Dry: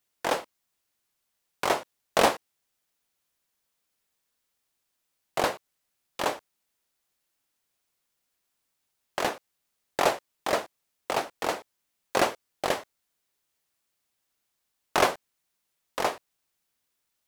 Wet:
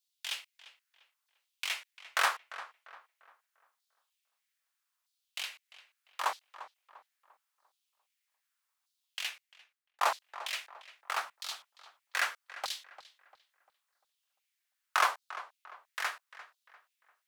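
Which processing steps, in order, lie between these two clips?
5.43–6.24 compressor 2:1, threshold -30 dBFS, peak gain reduction 5.5 dB; 11.25–12.16 resonant low shelf 240 Hz +11 dB, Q 3; LFO high-pass saw down 0.79 Hz 990–4200 Hz; darkening echo 0.347 s, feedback 39%, low-pass 2800 Hz, level -14.5 dB; 9.24–10.01 fade out; gain -6 dB

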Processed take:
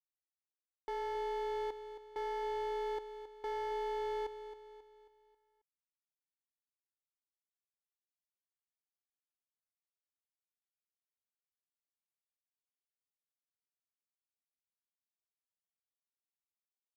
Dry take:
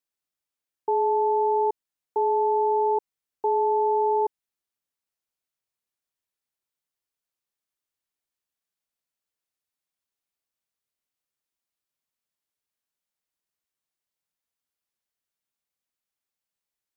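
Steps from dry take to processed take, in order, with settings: limiter -26.5 dBFS, peak gain reduction 10.5 dB; crossover distortion -39.5 dBFS; on a send: feedback echo 0.27 s, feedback 44%, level -11 dB; on the sum: gain -2.5 dB

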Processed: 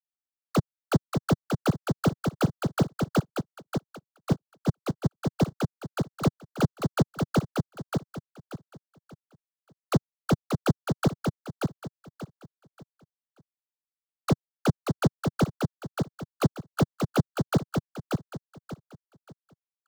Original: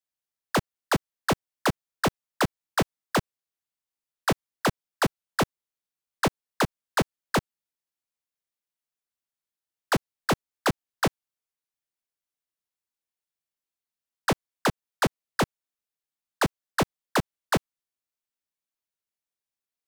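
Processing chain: gate -30 dBFS, range -20 dB; bell 140 Hz +11 dB 2.1 oct; sample leveller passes 1; envelope phaser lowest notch 210 Hz, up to 2500 Hz, full sweep at -16.5 dBFS; feedback echo 0.583 s, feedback 29%, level -4.5 dB; 3.19–5.4 dB-linear tremolo 5.3 Hz, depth 29 dB; gain -6 dB

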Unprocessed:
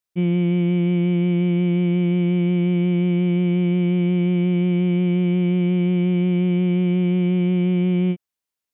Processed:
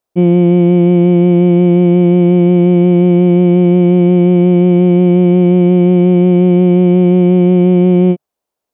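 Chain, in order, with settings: EQ curve 150 Hz 0 dB, 640 Hz +11 dB, 1900 Hz -5 dB; gain +8 dB

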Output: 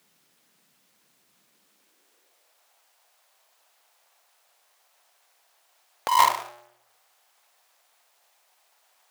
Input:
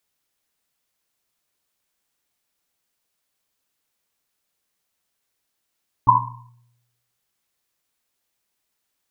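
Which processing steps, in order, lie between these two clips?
half-waves squared off; high-pass sweep 180 Hz -> 710 Hz, 1.52–2.65; negative-ratio compressor -19 dBFS, ratio -1

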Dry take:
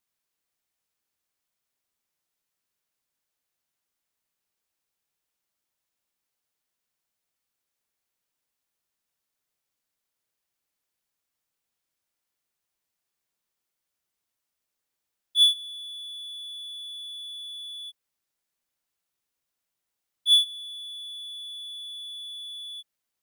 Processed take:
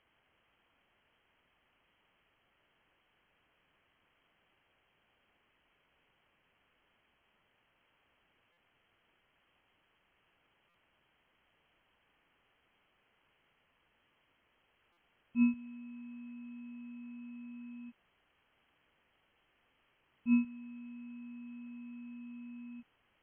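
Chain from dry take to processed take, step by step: inverted band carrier 3200 Hz; stuck buffer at 8.52/10.69/14.92, samples 256, times 8; gain +17 dB

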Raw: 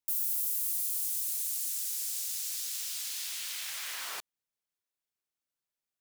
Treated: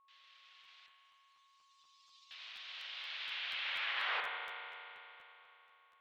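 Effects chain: 0.86–2.31 spectral contrast raised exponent 2.6; limiter -29 dBFS, peak gain reduction 9.5 dB; on a send: analogue delay 80 ms, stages 1024, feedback 57%, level -7 dB; on the sum: spring tank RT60 3.3 s, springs 34 ms, chirp 55 ms, DRR 2.5 dB; mistuned SSB +61 Hz 330–3400 Hz; whine 1100 Hz -73 dBFS; crackling interface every 0.24 s, samples 512, repeat, from 0.63; gain +5 dB

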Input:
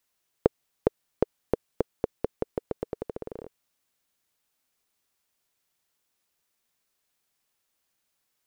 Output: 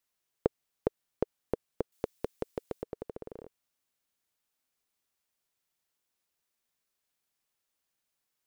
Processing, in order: 1.92–2.82 high shelf 2300 Hz +12 dB; gain -6 dB

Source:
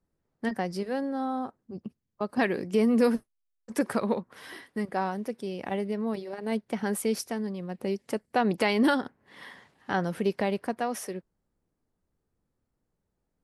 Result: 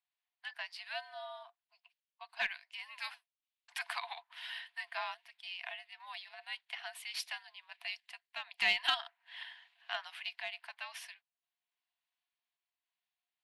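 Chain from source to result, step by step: rippled Chebyshev high-pass 780 Hz, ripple 9 dB; band shelf 2800 Hz +11 dB; frequency shift -110 Hz; in parallel at -7 dB: one-sided clip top -24.5 dBFS; on the sum: random-step tremolo, depth 70%; gain -4.5 dB

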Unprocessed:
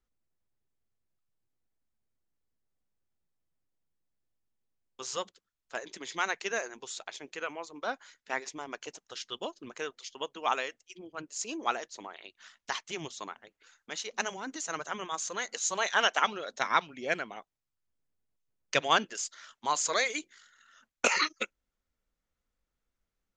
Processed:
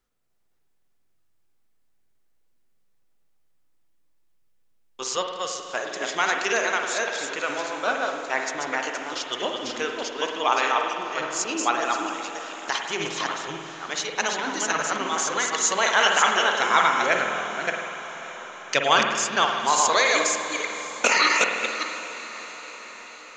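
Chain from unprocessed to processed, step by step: reverse delay 0.295 s, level -3.5 dB; low shelf 180 Hz -7.5 dB; in parallel at -1 dB: limiter -20.5 dBFS, peak gain reduction 11 dB; on the sum: diffused feedback echo 0.577 s, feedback 62%, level -14 dB; spring tank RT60 1.6 s, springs 49 ms, chirp 65 ms, DRR 3 dB; gain +3 dB

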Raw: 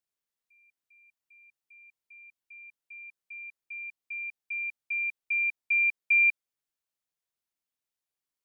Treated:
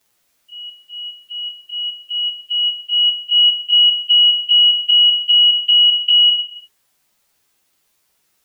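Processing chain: pitch shift by moving bins +3.5 st; compressor 12:1, threshold -36 dBFS, peak gain reduction 15.5 dB; non-linear reverb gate 0.38 s falling, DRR 10 dB; maximiser +36 dB; gain -6 dB

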